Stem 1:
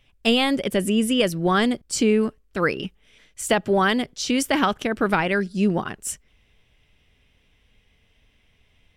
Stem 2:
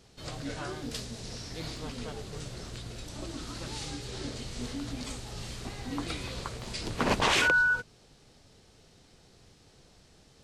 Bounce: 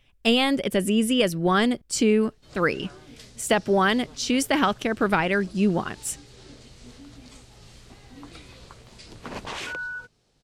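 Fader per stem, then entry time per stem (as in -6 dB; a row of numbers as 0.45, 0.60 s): -1.0, -9.0 dB; 0.00, 2.25 s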